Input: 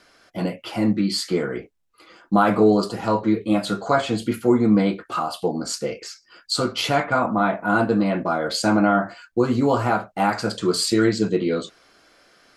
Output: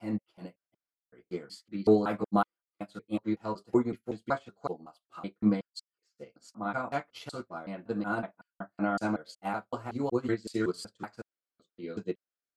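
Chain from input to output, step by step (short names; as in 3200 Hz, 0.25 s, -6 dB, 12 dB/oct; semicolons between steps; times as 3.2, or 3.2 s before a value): slices in reverse order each 0.187 s, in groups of 5; upward expander 2.5:1, over -40 dBFS; gain -4.5 dB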